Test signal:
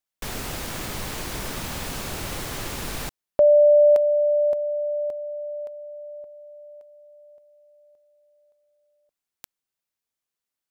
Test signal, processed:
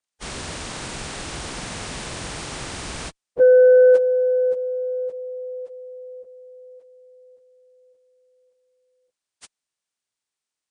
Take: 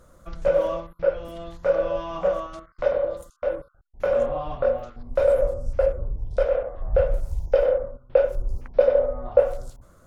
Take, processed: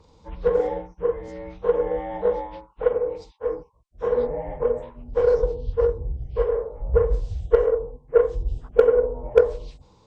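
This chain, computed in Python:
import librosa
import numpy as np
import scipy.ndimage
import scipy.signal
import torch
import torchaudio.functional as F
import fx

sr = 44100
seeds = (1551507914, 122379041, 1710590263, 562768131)

y = fx.partial_stretch(x, sr, pct=82)
y = fx.cheby_harmonics(y, sr, harmonics=(3,), levels_db=(-18,), full_scale_db=-8.5)
y = y * librosa.db_to_amplitude(5.5)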